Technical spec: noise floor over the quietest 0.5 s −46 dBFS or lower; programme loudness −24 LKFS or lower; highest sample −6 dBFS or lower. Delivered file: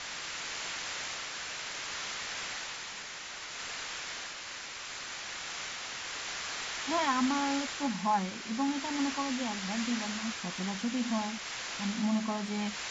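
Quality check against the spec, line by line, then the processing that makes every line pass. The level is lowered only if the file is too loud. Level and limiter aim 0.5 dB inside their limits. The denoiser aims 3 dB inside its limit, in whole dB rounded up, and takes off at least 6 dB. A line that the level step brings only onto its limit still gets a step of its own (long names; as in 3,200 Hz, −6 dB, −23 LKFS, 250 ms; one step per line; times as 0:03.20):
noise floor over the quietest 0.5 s −43 dBFS: out of spec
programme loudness −34.0 LKFS: in spec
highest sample −18.0 dBFS: in spec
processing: broadband denoise 6 dB, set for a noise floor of −43 dBFS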